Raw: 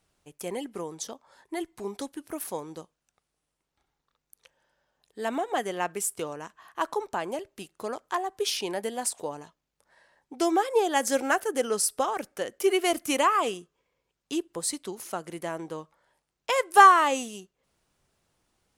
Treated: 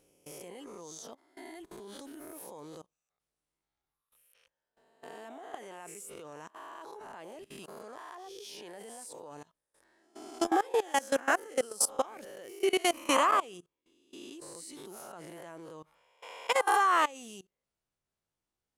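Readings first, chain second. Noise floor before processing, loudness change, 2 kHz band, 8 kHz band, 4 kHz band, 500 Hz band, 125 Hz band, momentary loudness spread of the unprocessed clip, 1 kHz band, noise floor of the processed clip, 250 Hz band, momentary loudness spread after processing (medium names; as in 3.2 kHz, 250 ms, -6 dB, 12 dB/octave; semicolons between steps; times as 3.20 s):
-83 dBFS, -2.0 dB, -5.5 dB, -5.5 dB, -5.0 dB, -6.0 dB, -10.0 dB, 16 LU, -6.5 dB, under -85 dBFS, -7.0 dB, 21 LU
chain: reverse spectral sustain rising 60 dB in 0.71 s; level held to a coarse grid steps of 22 dB; trim -2.5 dB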